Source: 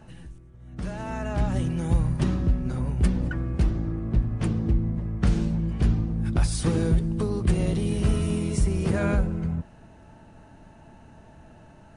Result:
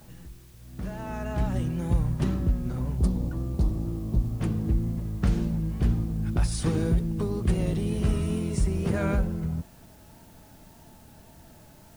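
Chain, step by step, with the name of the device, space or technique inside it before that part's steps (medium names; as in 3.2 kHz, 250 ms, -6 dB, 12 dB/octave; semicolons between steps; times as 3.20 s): 2.97–4.40 s: high-order bell 2.1 kHz -14 dB 1.3 oct; plain cassette with noise reduction switched in (tape noise reduction on one side only decoder only; wow and flutter; white noise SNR 32 dB); trim -2 dB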